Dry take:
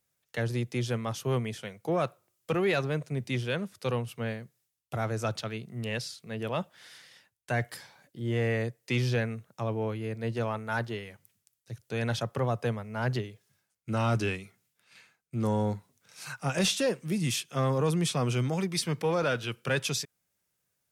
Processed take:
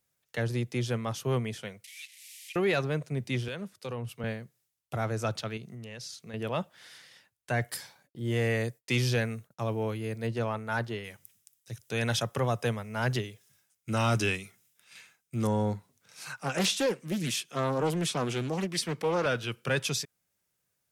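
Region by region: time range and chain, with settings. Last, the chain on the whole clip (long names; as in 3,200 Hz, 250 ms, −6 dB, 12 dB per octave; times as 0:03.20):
0:01.84–0:02.56: linear delta modulator 64 kbit/s, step −41.5 dBFS + Butterworth high-pass 2,000 Hz 72 dB per octave + multiband upward and downward compressor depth 70%
0:03.48–0:04.24: downward compressor 20 to 1, threshold −31 dBFS + hard clipping −27 dBFS + multiband upward and downward expander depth 100%
0:05.57–0:06.34: downward compressor 10 to 1, threshold −39 dBFS + high-pass filter 47 Hz + parametric band 6,200 Hz +6.5 dB 0.33 octaves
0:07.61–0:10.27: downward expander −56 dBFS + high-shelf EQ 4,600 Hz +10.5 dB + one half of a high-frequency compander decoder only
0:11.04–0:15.47: high-shelf EQ 2,400 Hz +9 dB + notch filter 4,400 Hz, Q 8.8
0:16.22–0:19.26: high-pass filter 170 Hz + highs frequency-modulated by the lows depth 0.44 ms
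whole clip: no processing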